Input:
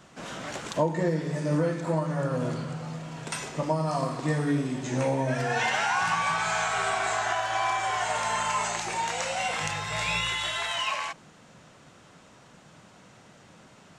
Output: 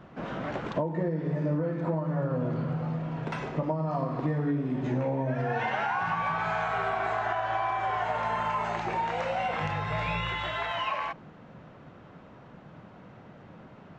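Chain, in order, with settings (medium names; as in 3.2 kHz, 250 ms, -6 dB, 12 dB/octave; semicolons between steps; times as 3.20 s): tape spacing loss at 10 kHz 42 dB; compression, threshold -32 dBFS, peak gain reduction 11 dB; trim +6.5 dB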